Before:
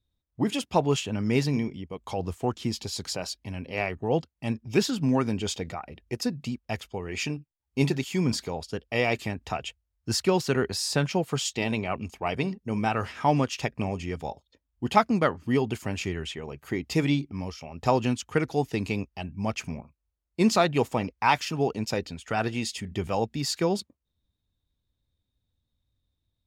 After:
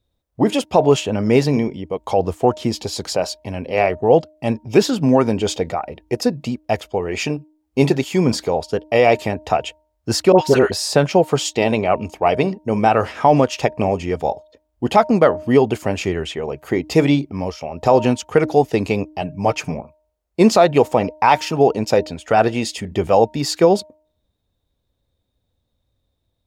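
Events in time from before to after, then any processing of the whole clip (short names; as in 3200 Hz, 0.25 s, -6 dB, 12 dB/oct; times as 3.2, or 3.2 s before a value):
10.32–10.72 dispersion highs, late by 68 ms, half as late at 1100 Hz
19.21–19.74 comb 6.7 ms, depth 62%
whole clip: bell 580 Hz +10.5 dB 1.5 oct; de-hum 308 Hz, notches 3; maximiser +7 dB; gain -1 dB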